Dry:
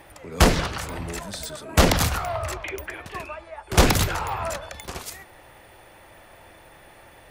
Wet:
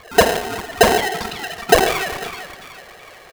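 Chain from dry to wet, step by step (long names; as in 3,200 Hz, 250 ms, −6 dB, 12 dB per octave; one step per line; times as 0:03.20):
expanding power law on the bin magnitudes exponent 3.1
low-pass filter 2,000 Hz 24 dB per octave
tempo change 1.1×
on a send: feedback echo with a high-pass in the loop 750 ms, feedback 45%, high-pass 280 Hz, level −9 dB
on the sum: reverb whose tail is shaped and stops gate 390 ms flat, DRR 8.5 dB
wrong playback speed 7.5 ips tape played at 15 ips
ring modulator with a square carrier 570 Hz
level +5.5 dB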